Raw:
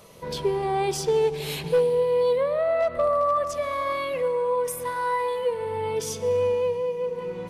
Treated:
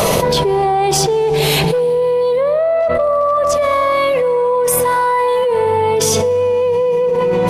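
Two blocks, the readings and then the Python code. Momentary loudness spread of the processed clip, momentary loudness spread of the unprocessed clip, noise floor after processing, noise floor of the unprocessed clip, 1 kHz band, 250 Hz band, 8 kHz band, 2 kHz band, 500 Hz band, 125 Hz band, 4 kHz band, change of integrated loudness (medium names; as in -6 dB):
1 LU, 6 LU, -15 dBFS, -35 dBFS, +11.5 dB, +13.5 dB, +16.5 dB, +12.0 dB, +10.0 dB, +14.0 dB, +15.0 dB, +10.5 dB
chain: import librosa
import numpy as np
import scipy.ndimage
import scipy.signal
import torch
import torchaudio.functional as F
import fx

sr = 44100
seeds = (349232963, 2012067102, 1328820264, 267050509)

y = fx.peak_eq(x, sr, hz=710.0, db=6.5, octaves=0.66)
y = fx.env_flatten(y, sr, amount_pct=100)
y = y * 10.0 ** (1.0 / 20.0)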